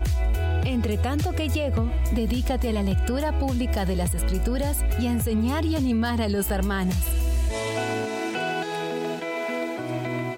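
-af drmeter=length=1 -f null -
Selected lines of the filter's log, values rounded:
Channel 1: DR: 4.1
Overall DR: 4.1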